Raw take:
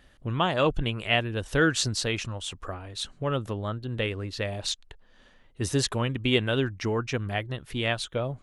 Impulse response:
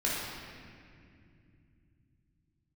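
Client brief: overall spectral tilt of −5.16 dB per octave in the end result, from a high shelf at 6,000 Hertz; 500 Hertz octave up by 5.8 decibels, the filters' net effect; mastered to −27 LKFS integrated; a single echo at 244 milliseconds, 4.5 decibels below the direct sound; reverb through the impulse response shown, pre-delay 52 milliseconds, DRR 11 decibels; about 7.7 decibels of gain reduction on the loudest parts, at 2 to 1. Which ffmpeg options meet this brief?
-filter_complex "[0:a]equalizer=frequency=500:width_type=o:gain=7,highshelf=frequency=6000:gain=-5.5,acompressor=threshold=-28dB:ratio=2,aecho=1:1:244:0.596,asplit=2[link_01][link_02];[1:a]atrim=start_sample=2205,adelay=52[link_03];[link_02][link_03]afir=irnorm=-1:irlink=0,volume=-19.5dB[link_04];[link_01][link_04]amix=inputs=2:normalize=0,volume=2dB"

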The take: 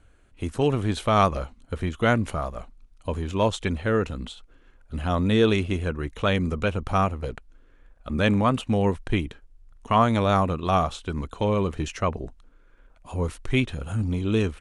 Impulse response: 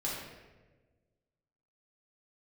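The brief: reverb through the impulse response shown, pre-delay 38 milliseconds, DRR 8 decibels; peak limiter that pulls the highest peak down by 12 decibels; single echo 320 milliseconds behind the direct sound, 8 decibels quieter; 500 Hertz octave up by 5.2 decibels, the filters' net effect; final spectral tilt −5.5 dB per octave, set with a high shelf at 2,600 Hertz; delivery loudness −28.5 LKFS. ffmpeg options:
-filter_complex "[0:a]equalizer=frequency=500:width_type=o:gain=6,highshelf=frequency=2600:gain=7,alimiter=limit=-15.5dB:level=0:latency=1,aecho=1:1:320:0.398,asplit=2[link_01][link_02];[1:a]atrim=start_sample=2205,adelay=38[link_03];[link_02][link_03]afir=irnorm=-1:irlink=0,volume=-12.5dB[link_04];[link_01][link_04]amix=inputs=2:normalize=0,volume=-3dB"

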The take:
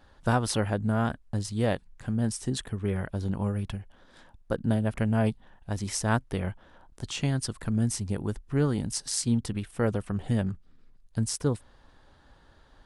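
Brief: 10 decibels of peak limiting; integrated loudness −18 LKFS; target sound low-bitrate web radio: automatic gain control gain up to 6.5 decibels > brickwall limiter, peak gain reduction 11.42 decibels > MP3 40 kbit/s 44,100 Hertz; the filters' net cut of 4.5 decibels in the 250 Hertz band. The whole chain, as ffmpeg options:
ffmpeg -i in.wav -af "equalizer=frequency=250:width_type=o:gain=-5.5,alimiter=limit=-22dB:level=0:latency=1,dynaudnorm=maxgain=6.5dB,alimiter=level_in=9.5dB:limit=-24dB:level=0:latency=1,volume=-9.5dB,volume=26dB" -ar 44100 -c:a libmp3lame -b:a 40k out.mp3

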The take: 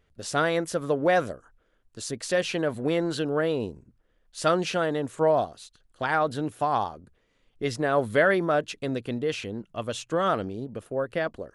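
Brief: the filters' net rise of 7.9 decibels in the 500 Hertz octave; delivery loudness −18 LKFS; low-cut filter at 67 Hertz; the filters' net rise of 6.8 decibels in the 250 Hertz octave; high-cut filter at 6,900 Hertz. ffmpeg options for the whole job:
ffmpeg -i in.wav -af "highpass=67,lowpass=6900,equalizer=frequency=250:width_type=o:gain=6,equalizer=frequency=500:width_type=o:gain=8,volume=2.5dB" out.wav

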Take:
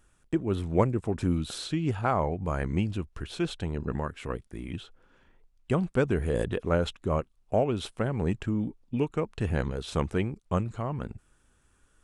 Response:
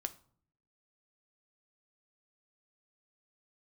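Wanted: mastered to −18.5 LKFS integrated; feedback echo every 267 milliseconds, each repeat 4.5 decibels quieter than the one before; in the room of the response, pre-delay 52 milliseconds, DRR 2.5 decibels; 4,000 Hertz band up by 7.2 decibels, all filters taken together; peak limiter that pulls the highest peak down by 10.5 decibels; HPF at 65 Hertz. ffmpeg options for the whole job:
-filter_complex "[0:a]highpass=65,equalizer=frequency=4000:width_type=o:gain=8.5,alimiter=limit=-19dB:level=0:latency=1,aecho=1:1:267|534|801|1068|1335|1602|1869|2136|2403:0.596|0.357|0.214|0.129|0.0772|0.0463|0.0278|0.0167|0.01,asplit=2[link_01][link_02];[1:a]atrim=start_sample=2205,adelay=52[link_03];[link_02][link_03]afir=irnorm=-1:irlink=0,volume=-1.5dB[link_04];[link_01][link_04]amix=inputs=2:normalize=0,volume=9.5dB"

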